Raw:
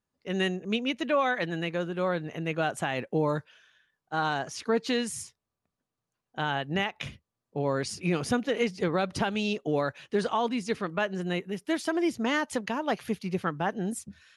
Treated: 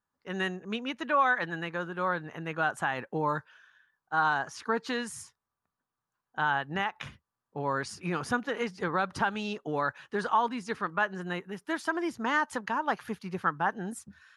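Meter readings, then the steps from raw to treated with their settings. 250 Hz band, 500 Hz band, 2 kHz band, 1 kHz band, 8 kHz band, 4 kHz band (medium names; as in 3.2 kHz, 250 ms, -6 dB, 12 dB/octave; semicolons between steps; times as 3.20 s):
-5.5 dB, -5.5 dB, +2.5 dB, +3.0 dB, -5.5 dB, -5.5 dB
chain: high-order bell 1.2 kHz +10 dB 1.3 oct; trim -5.5 dB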